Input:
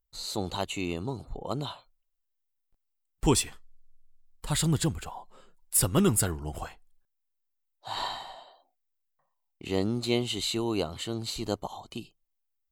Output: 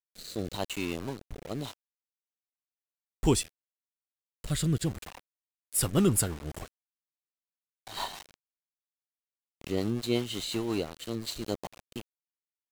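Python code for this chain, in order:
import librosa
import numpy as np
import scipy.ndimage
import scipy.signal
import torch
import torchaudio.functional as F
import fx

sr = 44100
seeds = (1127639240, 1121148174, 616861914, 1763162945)

y = np.where(np.abs(x) >= 10.0 ** (-35.0 / 20.0), x, 0.0)
y = fx.rotary_switch(y, sr, hz=0.9, then_hz=5.5, switch_at_s=4.79)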